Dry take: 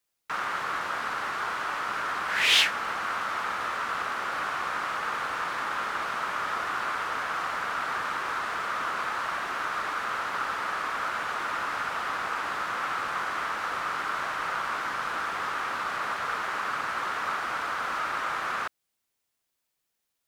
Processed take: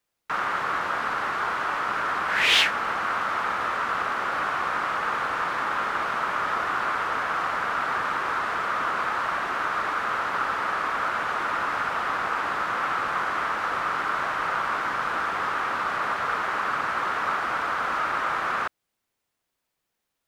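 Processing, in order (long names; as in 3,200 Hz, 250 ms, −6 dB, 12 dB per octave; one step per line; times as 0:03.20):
high-shelf EQ 3,000 Hz −8.5 dB
level +5.5 dB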